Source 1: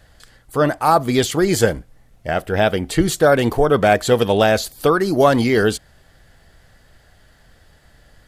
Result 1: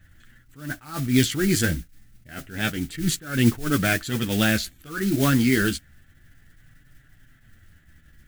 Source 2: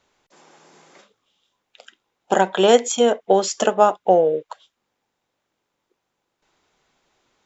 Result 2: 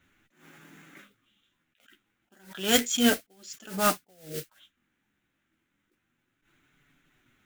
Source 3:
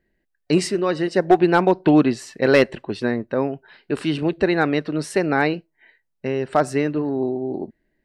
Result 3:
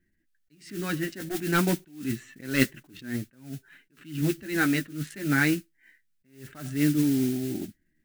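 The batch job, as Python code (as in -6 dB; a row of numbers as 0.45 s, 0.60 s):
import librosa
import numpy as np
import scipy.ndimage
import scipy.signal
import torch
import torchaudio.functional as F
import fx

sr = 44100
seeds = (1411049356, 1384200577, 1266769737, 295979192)

y = fx.wiener(x, sr, points=9)
y = fx.chorus_voices(y, sr, voices=2, hz=0.29, base_ms=11, depth_ms=4.3, mix_pct=35)
y = fx.mod_noise(y, sr, seeds[0], snr_db=18)
y = fx.band_shelf(y, sr, hz=670.0, db=-15.5, octaves=1.7)
y = fx.attack_slew(y, sr, db_per_s=130.0)
y = librosa.util.normalize(y) * 10.0 ** (-6 / 20.0)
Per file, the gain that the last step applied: +2.0 dB, +8.0 dB, +2.5 dB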